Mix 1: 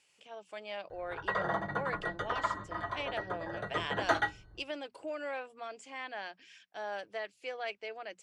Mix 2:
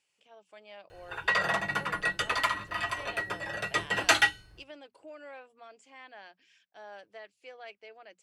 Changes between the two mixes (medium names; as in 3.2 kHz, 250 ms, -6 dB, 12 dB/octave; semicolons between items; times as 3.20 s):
speech -8.0 dB; background: remove boxcar filter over 17 samples